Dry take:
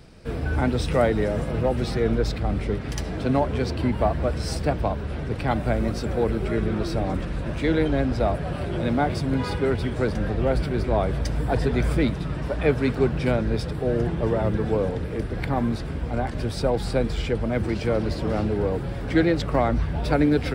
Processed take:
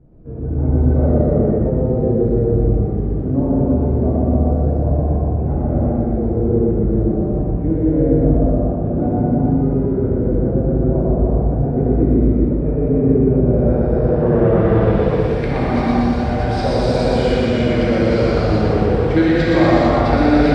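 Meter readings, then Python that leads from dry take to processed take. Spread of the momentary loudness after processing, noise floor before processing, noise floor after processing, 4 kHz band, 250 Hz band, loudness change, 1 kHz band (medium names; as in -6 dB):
5 LU, -31 dBFS, -20 dBFS, no reading, +9.5 dB, +8.0 dB, +5.0 dB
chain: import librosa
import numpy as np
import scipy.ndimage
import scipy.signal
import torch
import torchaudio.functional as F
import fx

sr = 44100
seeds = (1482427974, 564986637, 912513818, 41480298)

p1 = x + fx.echo_feedback(x, sr, ms=121, feedback_pct=54, wet_db=-3.0, dry=0)
p2 = fx.rev_gated(p1, sr, seeds[0], gate_ms=490, shape='flat', drr_db=-8.0)
p3 = fx.filter_sweep_lowpass(p2, sr, from_hz=420.0, to_hz=5500.0, start_s=13.45, end_s=15.32, q=0.77)
y = p3 * librosa.db_to_amplitude(-2.0)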